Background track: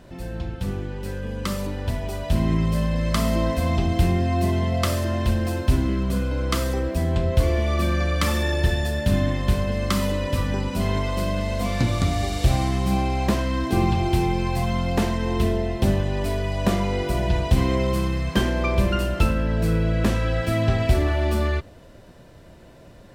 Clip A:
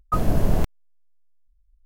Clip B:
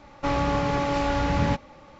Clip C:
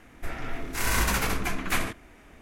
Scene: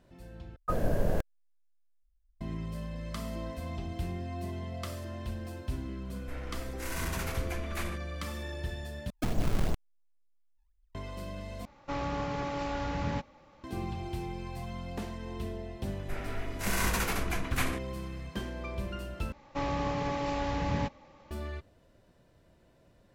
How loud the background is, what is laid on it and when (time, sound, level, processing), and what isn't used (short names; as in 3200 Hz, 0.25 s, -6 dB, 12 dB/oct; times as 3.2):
background track -16 dB
0.56 replace with A -9.5 dB + small resonant body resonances 530/1600 Hz, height 11 dB, ringing for 20 ms
6.05 add C -10.5 dB + hard clip -20 dBFS
9.1 replace with A -9 dB + decimation with a swept rate 29×, swing 160% 2.8 Hz
11.65 replace with B -9.5 dB
15.86 add C -5 dB
19.32 replace with B -7.5 dB + notch 1400 Hz, Q 11